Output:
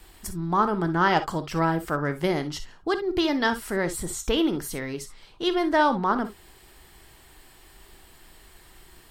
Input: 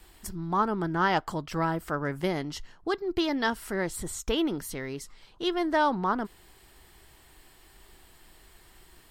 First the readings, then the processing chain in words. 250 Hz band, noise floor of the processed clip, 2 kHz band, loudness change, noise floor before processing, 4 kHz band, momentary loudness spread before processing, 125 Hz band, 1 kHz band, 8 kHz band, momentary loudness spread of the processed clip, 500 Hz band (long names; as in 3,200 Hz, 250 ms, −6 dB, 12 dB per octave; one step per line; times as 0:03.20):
+4.0 dB, −53 dBFS, +4.0 dB, +4.0 dB, −57 dBFS, +4.0 dB, 12 LU, +4.0 dB, +4.0 dB, +4.0 dB, 12 LU, +4.0 dB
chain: reverb whose tail is shaped and stops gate 80 ms rising, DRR 10 dB
level +3.5 dB